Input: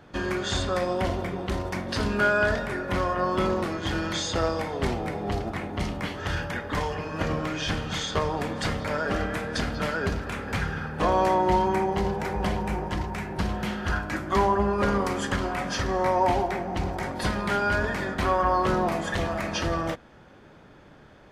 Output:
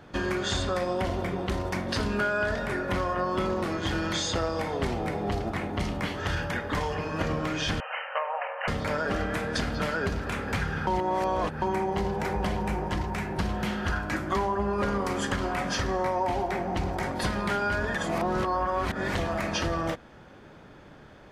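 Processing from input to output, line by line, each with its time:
0:07.80–0:08.68: linear-phase brick-wall band-pass 480–3,100 Hz
0:10.87–0:11.62: reverse
0:17.95–0:19.15: reverse
whole clip: downward compressor 4 to 1, threshold −26 dBFS; level +1.5 dB

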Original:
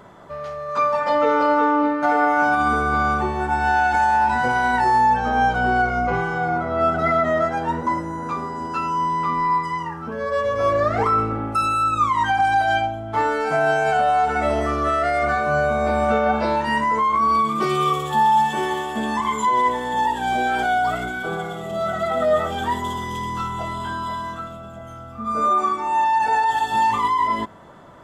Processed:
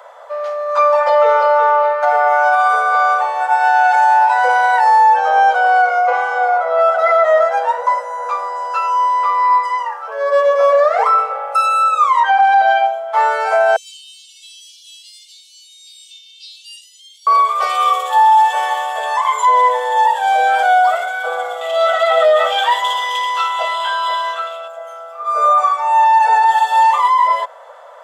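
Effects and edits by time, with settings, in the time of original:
0:12.20–0:12.86: low-pass filter 4,200 Hz
0:13.76–0:17.27: Butterworth high-pass 3,000 Hz 72 dB per octave
0:21.61–0:24.68: parametric band 3,000 Hz +12 dB 1.4 octaves
whole clip: Butterworth high-pass 490 Hz 96 dB per octave; tilt shelving filter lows +5 dB, about 640 Hz; boost into a limiter +13 dB; level −3.5 dB

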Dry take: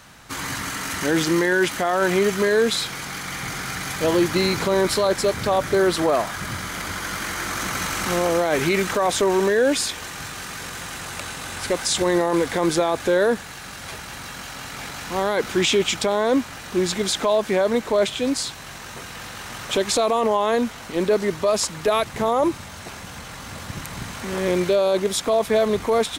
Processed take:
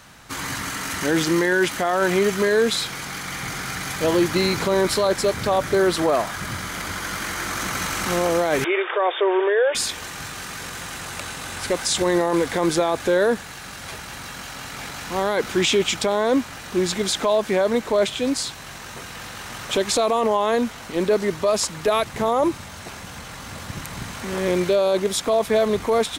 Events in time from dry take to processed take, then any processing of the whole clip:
0:08.64–0:09.75: linear-phase brick-wall band-pass 330–3,700 Hz

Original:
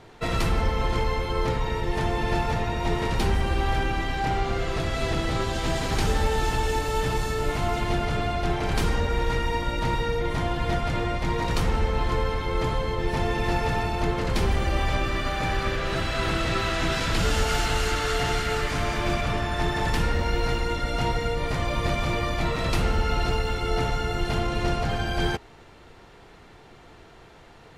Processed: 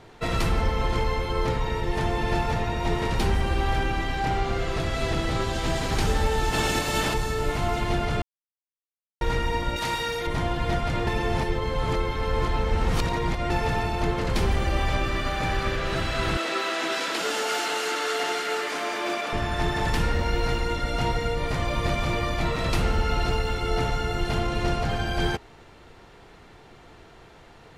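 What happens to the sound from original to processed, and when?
0:06.52–0:07.13: ceiling on every frequency bin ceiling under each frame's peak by 15 dB
0:08.22–0:09.21: silence
0:09.76–0:10.27: spectral tilt +3 dB per octave
0:11.07–0:13.50: reverse
0:16.37–0:19.33: high-pass filter 290 Hz 24 dB per octave

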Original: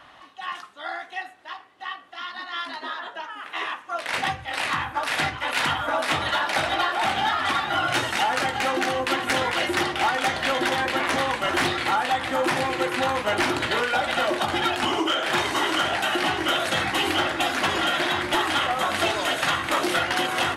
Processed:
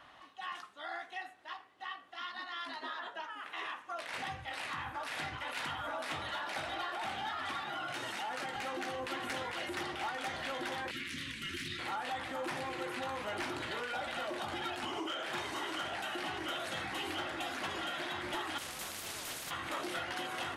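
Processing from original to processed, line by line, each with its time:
0:07.62–0:08.56: high-pass filter 130 Hz 24 dB per octave
0:10.91–0:11.79: Chebyshev band-stop filter 230–2,300 Hz
0:18.58–0:19.51: every bin compressed towards the loudest bin 4 to 1
whole clip: brickwall limiter −23.5 dBFS; level −8 dB

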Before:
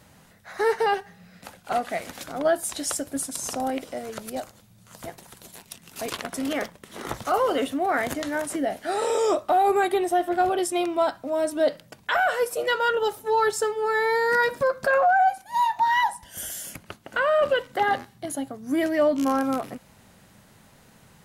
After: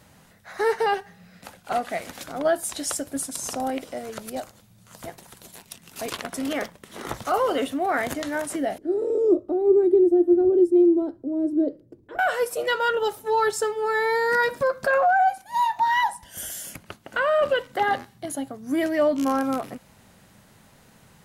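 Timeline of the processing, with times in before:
0:08.78–0:12.19: drawn EQ curve 120 Hz 0 dB, 180 Hz −10 dB, 340 Hz +12 dB, 770 Hz −19 dB, 2,900 Hz −29 dB, 4,800 Hz −26 dB

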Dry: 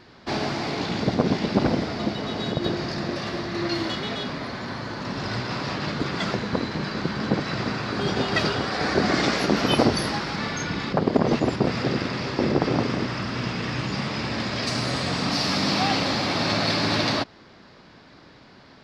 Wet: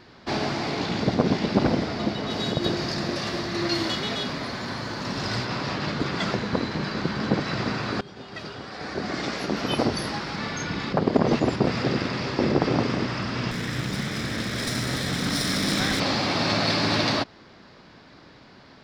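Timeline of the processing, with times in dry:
0:02.30–0:05.45: high-shelf EQ 5,700 Hz +10 dB
0:08.01–0:11.22: fade in, from −21 dB
0:13.51–0:16.00: lower of the sound and its delayed copy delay 0.55 ms

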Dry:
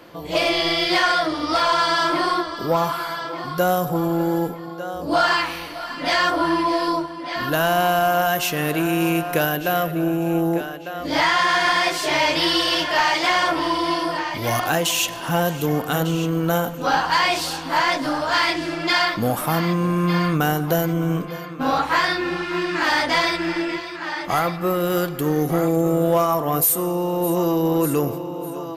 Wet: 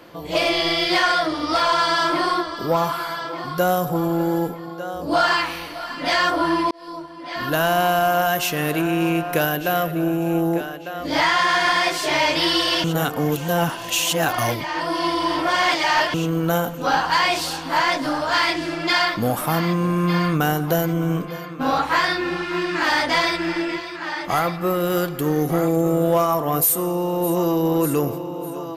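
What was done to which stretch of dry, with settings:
0:06.71–0:07.54: fade in
0:08.81–0:09.33: high-shelf EQ 6,300 Hz −10 dB
0:12.84–0:16.14: reverse

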